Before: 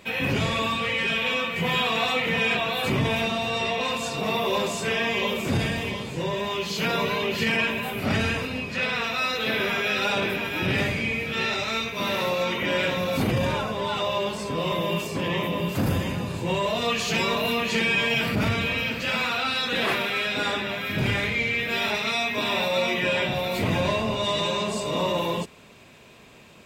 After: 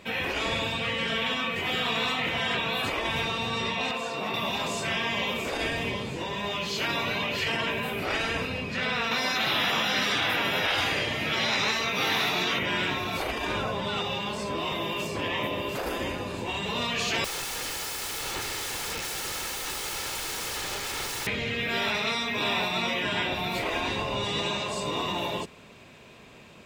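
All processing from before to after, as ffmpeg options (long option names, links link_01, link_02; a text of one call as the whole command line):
ffmpeg -i in.wav -filter_complex "[0:a]asettb=1/sr,asplit=3[link_01][link_02][link_03];[link_01]atrim=end=3.914[link_04];[link_02]atrim=start=3.91:end=4.34,asetpts=PTS-STARTPTS,afade=type=in:duration=0.004:curve=qsin,afade=type=out:start_time=0.426:duration=0.004:curve=qsin,bass=frequency=250:gain=-12,treble=frequency=4000:gain=-2,acrusher=bits=9:mode=log:mix=0:aa=0.000001,acrossover=split=2900[link_05][link_06];[link_06]acompressor=threshold=-39dB:ratio=4:attack=1:release=60[link_07];[link_05][link_07]amix=inputs=2:normalize=0[link_08];[link_03]atrim=start=4.336[link_09];[link_04][link_08]acrossfade=duration=0.004:curve1=hsin:curve2=qsin[link_10];[link_10][link_09]acrossfade=duration=0.004:curve1=qsin:curve2=hsin,asettb=1/sr,asplit=3[link_11][link_12][link_13];[link_11]atrim=end=9.114[link_14];[link_12]atrim=start=9.11:end=12.59,asetpts=PTS-STARTPTS,afade=type=in:duration=0.004:curve=qsin,afade=type=out:start_time=3.476:duration=0.004:curve=qsin,highpass=frequency=250:poles=1,bandreject=frequency=7800:width=9.1,acontrast=76[link_15];[link_13]atrim=start=12.586[link_16];[link_14][link_15]acrossfade=duration=0.004:curve1=hsin:curve2=qsin[link_17];[link_17][link_16]acrossfade=duration=0.004:curve1=qsin:curve2=hsin,asettb=1/sr,asplit=3[link_18][link_19][link_20];[link_18]atrim=end=17.244[link_21];[link_19]atrim=start=17.24:end=21.27,asetpts=PTS-STARTPTS,afade=type=in:duration=0.004:curve=qsin,afade=type=out:start_time=4.026:duration=0.004:curve=qsin,equalizer=frequency=1200:width=7:gain=-9,aeval=exprs='(mod(22.4*val(0)+1,2)-1)/22.4':channel_layout=same,aecho=1:1:2.3:0.38,atrim=end_sample=177723[link_22];[link_20]atrim=start=21.266[link_23];[link_21][link_22]acrossfade=duration=0.004:curve1=hsin:curve2=qsin[link_24];[link_24][link_23]acrossfade=duration=0.004:curve1=qsin:curve2=hsin,highshelf=frequency=7900:gain=-6.5,afftfilt=real='re*lt(hypot(re,im),0.224)':imag='im*lt(hypot(re,im),0.224)':win_size=1024:overlap=0.75,acontrast=87,volume=-7dB" out.wav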